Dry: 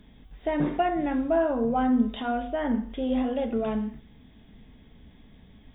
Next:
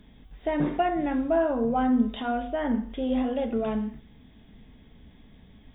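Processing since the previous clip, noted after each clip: nothing audible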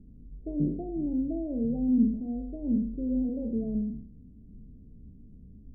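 spectral trails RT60 0.58 s; Gaussian blur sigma 24 samples; gain +1.5 dB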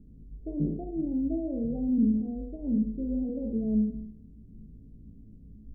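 resonator 54 Hz, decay 0.56 s, harmonics all, mix 80%; gain +8 dB

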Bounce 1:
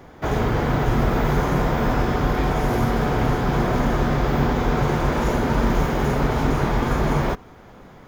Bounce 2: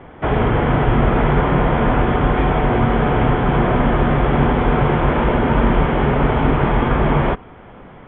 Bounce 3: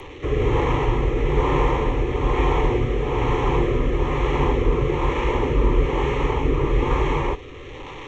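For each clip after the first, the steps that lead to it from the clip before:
Chebyshev low-pass 3300 Hz, order 6; gain +5.5 dB
delta modulation 32 kbps, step -25.5 dBFS; fixed phaser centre 1000 Hz, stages 8; rotary speaker horn 1.1 Hz

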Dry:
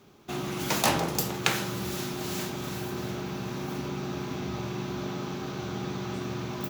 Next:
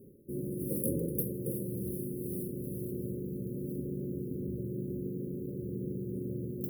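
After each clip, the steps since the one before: FFT band-reject 580–9100 Hz; reverse; upward compressor, threshold -37 dBFS; reverse; gain -2.5 dB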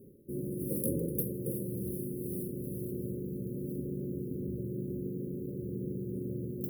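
overloaded stage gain 19 dB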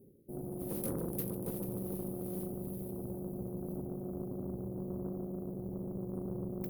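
multi-head echo 0.147 s, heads all three, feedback 57%, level -14 dB; added harmonics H 8 -20 dB, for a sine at -17.5 dBFS; gain -5.5 dB

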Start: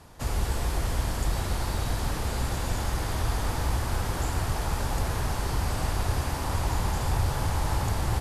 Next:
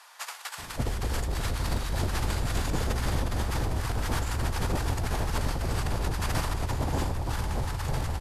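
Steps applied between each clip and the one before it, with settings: high shelf 6000 Hz -4.5 dB; negative-ratio compressor -31 dBFS, ratio -1; bands offset in time highs, lows 0.58 s, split 900 Hz; gain +3 dB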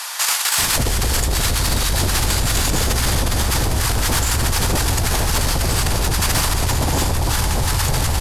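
high shelf 2800 Hz +12 dB; in parallel at -1 dB: negative-ratio compressor -33 dBFS, ratio -0.5; on the sum: sine folder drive 4 dB, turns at -10.5 dBFS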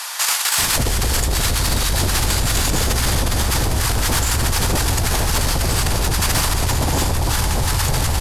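nothing audible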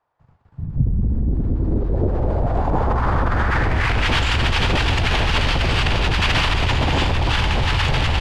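low-pass sweep 110 Hz -> 2900 Hz, 0.37–4.16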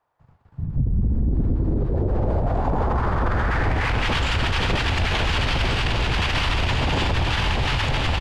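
echo 1.027 s -7.5 dB; limiter -13.5 dBFS, peak gain reduction 8 dB

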